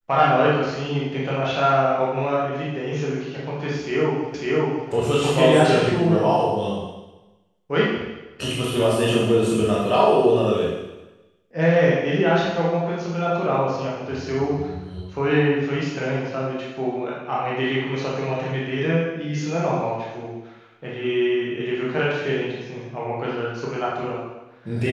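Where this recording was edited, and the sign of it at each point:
4.34 s: repeat of the last 0.55 s

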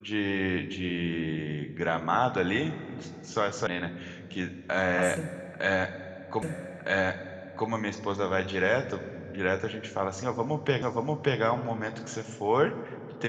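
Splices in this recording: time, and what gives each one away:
3.67 s: sound stops dead
6.42 s: repeat of the last 1.26 s
10.82 s: repeat of the last 0.58 s

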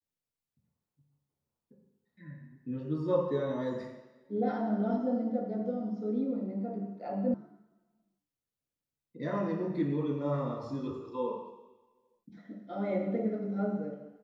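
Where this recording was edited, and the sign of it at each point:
7.34 s: sound stops dead

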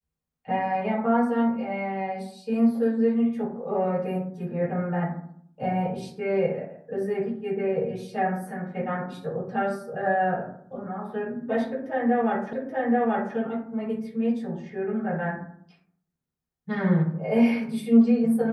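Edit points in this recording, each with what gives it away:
12.53 s: repeat of the last 0.83 s

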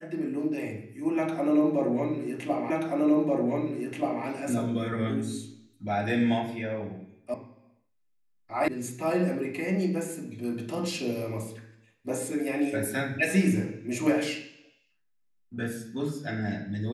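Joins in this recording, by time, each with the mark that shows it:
2.70 s: repeat of the last 1.53 s
7.34 s: sound stops dead
8.68 s: sound stops dead

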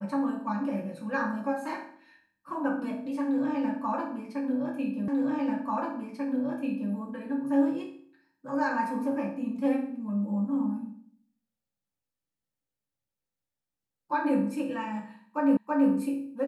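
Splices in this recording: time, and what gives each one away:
5.08 s: repeat of the last 1.84 s
15.57 s: repeat of the last 0.33 s

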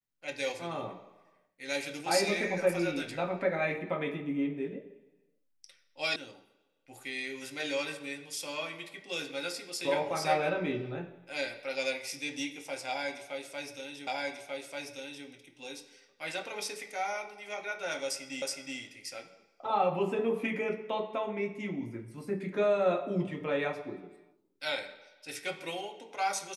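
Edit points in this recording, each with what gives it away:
6.16 s: sound stops dead
14.07 s: repeat of the last 1.19 s
18.42 s: repeat of the last 0.37 s

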